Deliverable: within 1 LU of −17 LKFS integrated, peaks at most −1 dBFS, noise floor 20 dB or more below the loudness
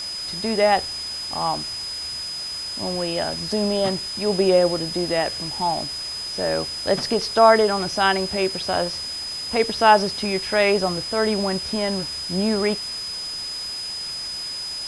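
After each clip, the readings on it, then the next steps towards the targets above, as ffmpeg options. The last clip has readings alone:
interfering tone 5,000 Hz; level of the tone −28 dBFS; background noise floor −31 dBFS; target noise floor −42 dBFS; integrated loudness −22.0 LKFS; sample peak −2.0 dBFS; target loudness −17.0 LKFS
→ -af "bandreject=frequency=5000:width=30"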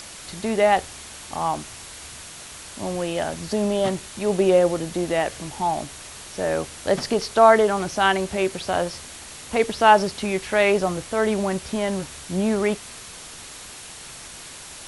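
interfering tone none found; background noise floor −40 dBFS; target noise floor −42 dBFS
→ -af "afftdn=noise_reduction=6:noise_floor=-40"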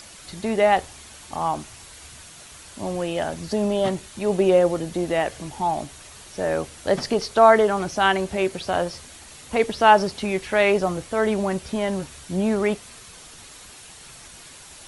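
background noise floor −44 dBFS; integrated loudness −22.5 LKFS; sample peak −2.5 dBFS; target loudness −17.0 LKFS
→ -af "volume=5.5dB,alimiter=limit=-1dB:level=0:latency=1"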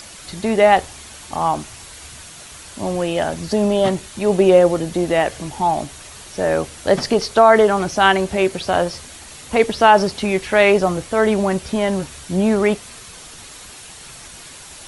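integrated loudness −17.5 LKFS; sample peak −1.0 dBFS; background noise floor −39 dBFS

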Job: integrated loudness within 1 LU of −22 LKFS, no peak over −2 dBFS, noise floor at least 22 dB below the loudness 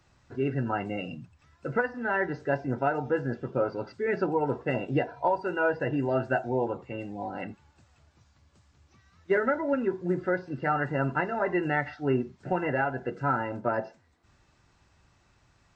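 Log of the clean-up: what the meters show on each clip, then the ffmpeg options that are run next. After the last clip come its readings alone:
integrated loudness −29.5 LKFS; sample peak −15.5 dBFS; target loudness −22.0 LKFS
→ -af "volume=7.5dB"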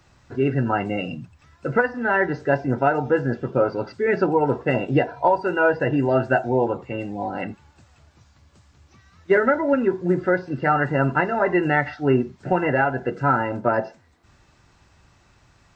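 integrated loudness −22.0 LKFS; sample peak −8.0 dBFS; background noise floor −58 dBFS

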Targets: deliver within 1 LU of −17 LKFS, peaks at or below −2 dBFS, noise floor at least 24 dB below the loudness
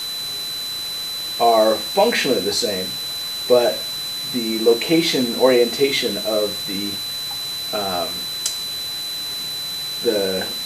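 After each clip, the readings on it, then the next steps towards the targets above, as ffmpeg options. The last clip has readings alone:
interfering tone 4,000 Hz; level of the tone −25 dBFS; background noise floor −27 dBFS; target noise floor −44 dBFS; integrated loudness −20.0 LKFS; sample peak −2.0 dBFS; target loudness −17.0 LKFS
→ -af "bandreject=frequency=4000:width=30"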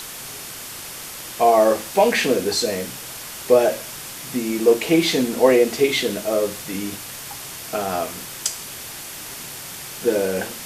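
interfering tone none found; background noise floor −35 dBFS; target noise floor −44 dBFS
→ -af "afftdn=noise_reduction=9:noise_floor=-35"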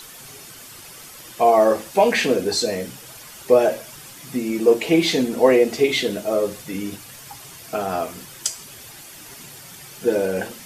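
background noise floor −41 dBFS; target noise floor −44 dBFS
→ -af "afftdn=noise_reduction=6:noise_floor=-41"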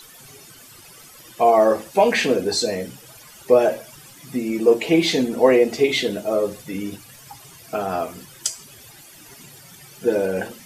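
background noise floor −46 dBFS; integrated loudness −20.0 LKFS; sample peak −2.5 dBFS; target loudness −17.0 LKFS
→ -af "volume=3dB,alimiter=limit=-2dB:level=0:latency=1"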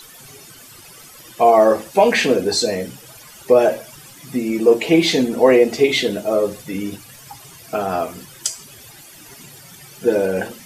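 integrated loudness −17.5 LKFS; sample peak −2.0 dBFS; background noise floor −43 dBFS

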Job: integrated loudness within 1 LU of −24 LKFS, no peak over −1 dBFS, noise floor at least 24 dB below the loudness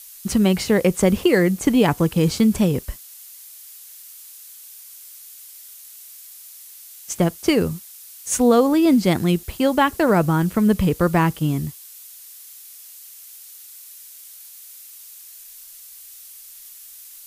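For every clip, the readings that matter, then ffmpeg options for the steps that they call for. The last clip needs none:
background noise floor −42 dBFS; target noise floor −43 dBFS; integrated loudness −19.0 LKFS; sample peak −3.0 dBFS; target loudness −24.0 LKFS
→ -af "afftdn=noise_reduction=6:noise_floor=-42"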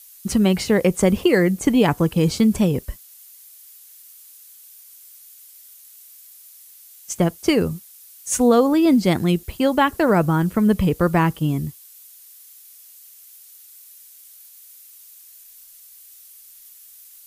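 background noise floor −46 dBFS; integrated loudness −19.0 LKFS; sample peak −3.5 dBFS; target loudness −24.0 LKFS
→ -af "volume=-5dB"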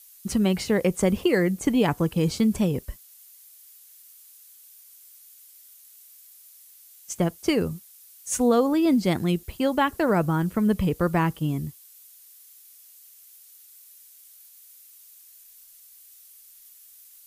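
integrated loudness −24.0 LKFS; sample peak −8.5 dBFS; background noise floor −51 dBFS

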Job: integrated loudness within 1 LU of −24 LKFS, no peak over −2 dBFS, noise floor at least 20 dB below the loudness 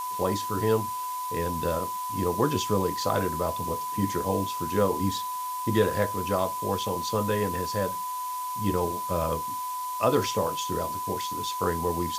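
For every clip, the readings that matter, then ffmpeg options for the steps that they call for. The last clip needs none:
interfering tone 1,000 Hz; level of the tone −30 dBFS; background noise floor −33 dBFS; target noise floor −48 dBFS; integrated loudness −28.0 LKFS; sample peak −9.5 dBFS; target loudness −24.0 LKFS
→ -af "bandreject=frequency=1000:width=30"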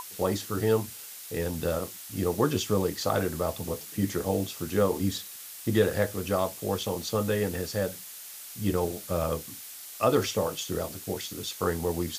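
interfering tone none found; background noise floor −43 dBFS; target noise floor −49 dBFS
→ -af "afftdn=noise_reduction=6:noise_floor=-43"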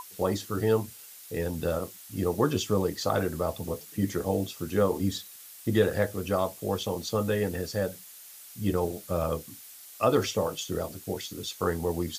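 background noise floor −48 dBFS; target noise floor −50 dBFS
→ -af "afftdn=noise_reduction=6:noise_floor=-48"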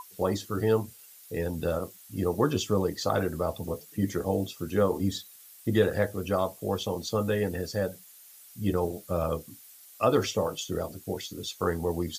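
background noise floor −52 dBFS; integrated loudness −29.5 LKFS; sample peak −10.5 dBFS; target loudness −24.0 LKFS
→ -af "volume=5.5dB"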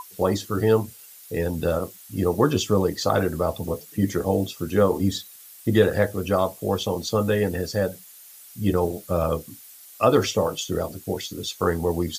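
integrated loudness −24.0 LKFS; sample peak −5.0 dBFS; background noise floor −46 dBFS

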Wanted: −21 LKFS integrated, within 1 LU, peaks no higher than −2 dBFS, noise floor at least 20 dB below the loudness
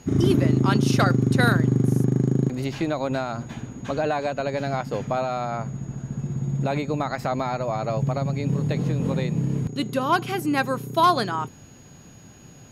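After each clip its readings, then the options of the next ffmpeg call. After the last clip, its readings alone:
interfering tone 6,700 Hz; level of the tone −53 dBFS; integrated loudness −24.0 LKFS; sample peak −9.0 dBFS; target loudness −21.0 LKFS
→ -af "bandreject=frequency=6700:width=30"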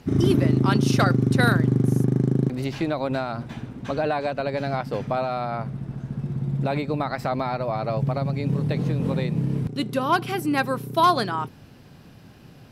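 interfering tone none found; integrated loudness −24.0 LKFS; sample peak −9.0 dBFS; target loudness −21.0 LKFS
→ -af "volume=3dB"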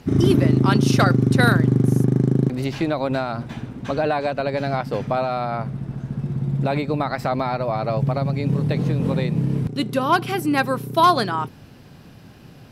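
integrated loudness −21.0 LKFS; sample peak −6.0 dBFS; background noise floor −45 dBFS

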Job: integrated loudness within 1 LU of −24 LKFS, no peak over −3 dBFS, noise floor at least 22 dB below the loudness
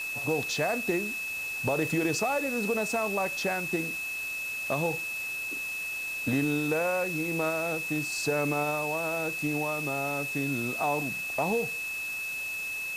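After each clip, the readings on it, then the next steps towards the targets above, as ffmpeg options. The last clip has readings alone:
interfering tone 2,600 Hz; level of the tone −32 dBFS; background noise floor −35 dBFS; target noise floor −51 dBFS; integrated loudness −29.0 LKFS; sample peak −16.0 dBFS; target loudness −24.0 LKFS
→ -af "bandreject=frequency=2600:width=30"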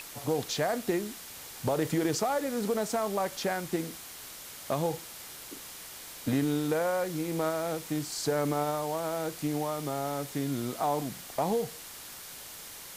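interfering tone none found; background noise floor −45 dBFS; target noise floor −54 dBFS
→ -af "afftdn=noise_reduction=9:noise_floor=-45"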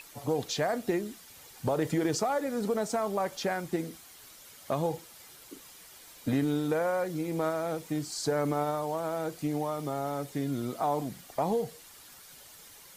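background noise floor −52 dBFS; target noise floor −54 dBFS
→ -af "afftdn=noise_reduction=6:noise_floor=-52"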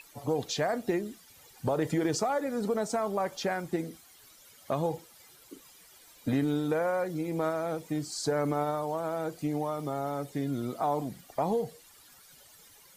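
background noise floor −57 dBFS; integrated loudness −31.5 LKFS; sample peak −17.0 dBFS; target loudness −24.0 LKFS
→ -af "volume=7.5dB"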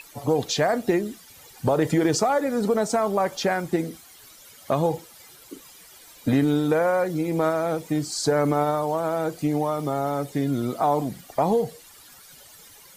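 integrated loudness −24.0 LKFS; sample peak −9.5 dBFS; background noise floor −49 dBFS

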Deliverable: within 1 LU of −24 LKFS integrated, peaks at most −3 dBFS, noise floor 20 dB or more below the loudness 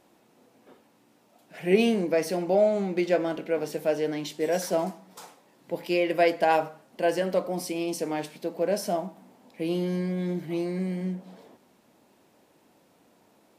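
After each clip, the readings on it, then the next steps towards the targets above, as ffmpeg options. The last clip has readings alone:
integrated loudness −27.0 LKFS; sample peak −8.5 dBFS; target loudness −24.0 LKFS
→ -af "volume=3dB"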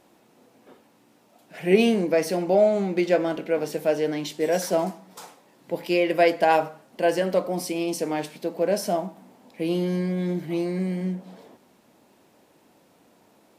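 integrated loudness −24.0 LKFS; sample peak −5.5 dBFS; background noise floor −60 dBFS

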